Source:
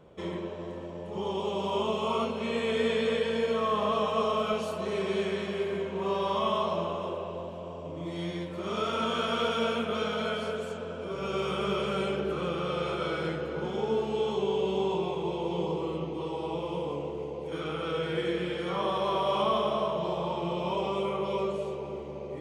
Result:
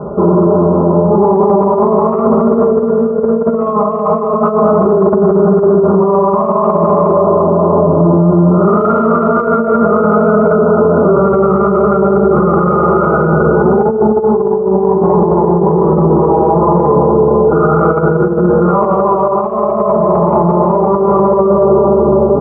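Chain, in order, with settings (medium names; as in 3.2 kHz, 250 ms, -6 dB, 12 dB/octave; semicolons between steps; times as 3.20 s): Chebyshev low-pass 1.4 kHz, order 8; on a send: feedback delay 205 ms, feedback 39%, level -9 dB; on the sum: compressor with a negative ratio -34 dBFS, ratio -0.5; high-pass 52 Hz; comb 4.9 ms, depth 72%; loudness maximiser +28.5 dB; trim -1 dB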